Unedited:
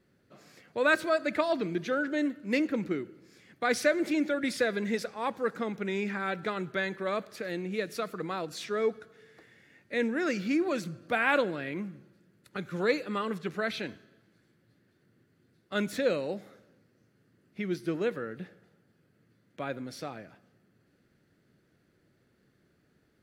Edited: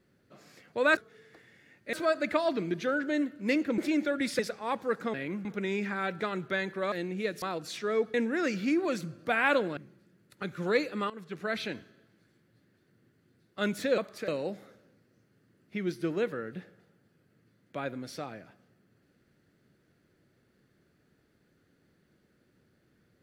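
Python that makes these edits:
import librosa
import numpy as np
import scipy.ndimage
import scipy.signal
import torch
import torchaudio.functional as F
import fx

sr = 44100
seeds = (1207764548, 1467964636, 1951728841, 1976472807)

y = fx.edit(x, sr, fx.cut(start_s=2.82, length_s=1.19),
    fx.cut(start_s=4.62, length_s=0.32),
    fx.move(start_s=7.16, length_s=0.3, to_s=16.12),
    fx.cut(start_s=7.96, length_s=0.33),
    fx.move(start_s=9.01, length_s=0.96, to_s=0.97),
    fx.move(start_s=11.6, length_s=0.31, to_s=5.69),
    fx.fade_in_from(start_s=13.24, length_s=0.47, floor_db=-17.0), tone=tone)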